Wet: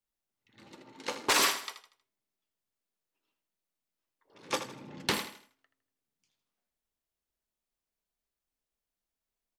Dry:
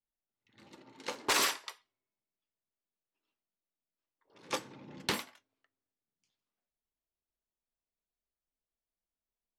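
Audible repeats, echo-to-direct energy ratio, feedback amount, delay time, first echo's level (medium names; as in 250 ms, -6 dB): 3, -10.5 dB, 36%, 79 ms, -11.0 dB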